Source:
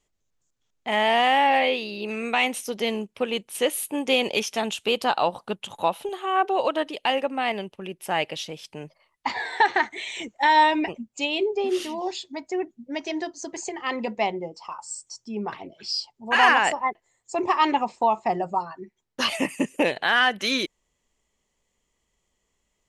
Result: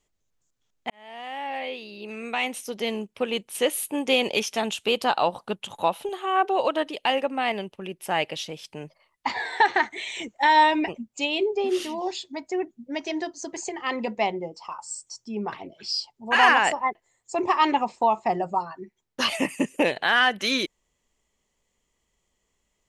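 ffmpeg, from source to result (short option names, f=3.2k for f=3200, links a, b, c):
-filter_complex "[0:a]asplit=2[a][b];[a]atrim=end=0.9,asetpts=PTS-STARTPTS,afade=t=out:st=0.896:d=0.004:c=hsin[c];[b]atrim=start=0.9,asetpts=PTS-STARTPTS,afade=t=in:d=2.51[d];[c][d]concat=n=2:v=0:a=1"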